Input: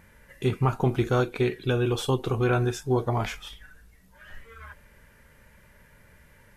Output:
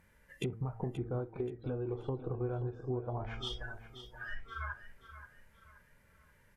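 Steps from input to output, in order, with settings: spectral noise reduction 18 dB; de-hum 112.3 Hz, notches 8; treble ducked by the level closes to 710 Hz, closed at -25 dBFS; compressor 8:1, threshold -42 dBFS, peak gain reduction 22 dB; feedback echo 0.529 s, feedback 38%, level -12 dB; gain +7 dB

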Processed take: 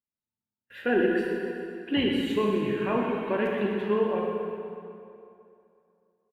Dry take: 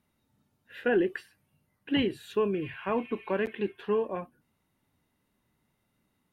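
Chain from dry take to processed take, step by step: gate -58 dBFS, range -29 dB; on a send: feedback echo 0.124 s, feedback 58%, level -10 dB; on the sum: plate-style reverb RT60 2.6 s, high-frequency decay 0.75×, DRR -0.5 dB

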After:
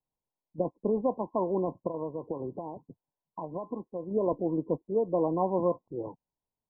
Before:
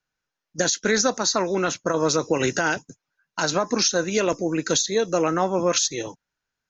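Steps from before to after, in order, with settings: 1.87–4.11 compressor, threshold -26 dBFS, peak gain reduction 10 dB; brick-wall FIR low-pass 1100 Hz; gain -5 dB

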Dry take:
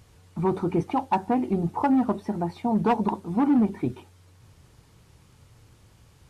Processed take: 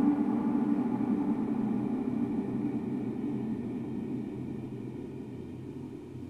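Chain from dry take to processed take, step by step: upward compressor, threshold -26 dBFS; Paulstretch 13×, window 1.00 s, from 3.61; mismatched tape noise reduction decoder only; gain -6.5 dB

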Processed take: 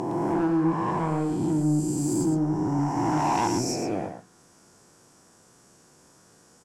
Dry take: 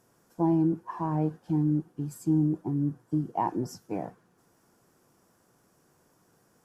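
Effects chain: spectral swells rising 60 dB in 2.70 s; LPF 8800 Hz 24 dB/oct; high shelf 4400 Hz +11.5 dB; soft clip -22 dBFS, distortion -13 dB; echo 0.113 s -7.5 dB; gain +2.5 dB

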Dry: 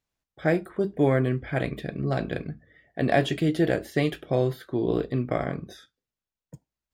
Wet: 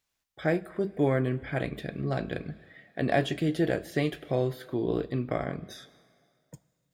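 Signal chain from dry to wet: plate-style reverb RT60 2 s, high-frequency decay 1×, DRR 20 dB; mismatched tape noise reduction encoder only; gain -3.5 dB

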